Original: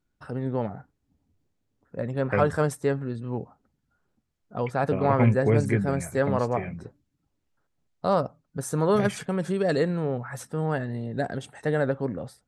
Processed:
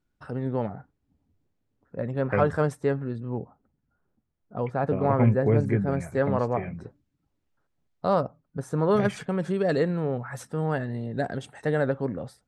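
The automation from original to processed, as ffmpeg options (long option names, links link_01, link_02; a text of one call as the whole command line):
ffmpeg -i in.wav -af "asetnsamples=nb_out_samples=441:pad=0,asendcmd='0.74 lowpass f 2800;3.18 lowpass f 1200;5.92 lowpass f 2300;6.74 lowpass f 4100;8.23 lowpass f 1700;8.91 lowpass f 3800;10.13 lowpass f 7800',lowpass=frequency=5900:poles=1" out.wav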